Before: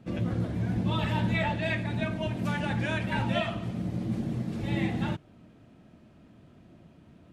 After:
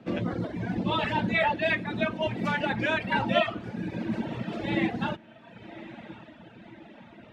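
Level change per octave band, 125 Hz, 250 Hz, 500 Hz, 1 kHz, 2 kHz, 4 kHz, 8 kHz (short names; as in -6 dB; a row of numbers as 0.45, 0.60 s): -5.5 dB, +0.5 dB, +5.0 dB, +5.5 dB, +5.5 dB, +4.0 dB, n/a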